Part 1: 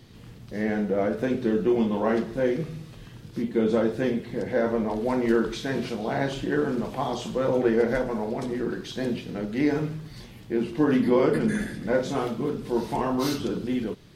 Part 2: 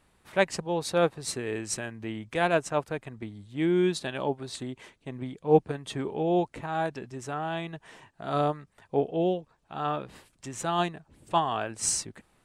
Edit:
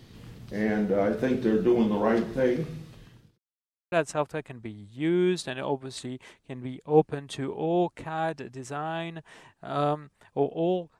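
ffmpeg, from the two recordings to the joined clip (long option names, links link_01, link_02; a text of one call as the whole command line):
ffmpeg -i cue0.wav -i cue1.wav -filter_complex "[0:a]apad=whole_dur=10.99,atrim=end=10.99,asplit=2[link_01][link_02];[link_01]atrim=end=3.38,asetpts=PTS-STARTPTS,afade=type=out:start_time=2.33:duration=1.05:curve=qsin[link_03];[link_02]atrim=start=3.38:end=3.92,asetpts=PTS-STARTPTS,volume=0[link_04];[1:a]atrim=start=2.49:end=9.56,asetpts=PTS-STARTPTS,afade=type=in:duration=0.004:curve=hsin[link_05];[link_03][link_04][link_05]concat=n=3:v=0:a=1" out.wav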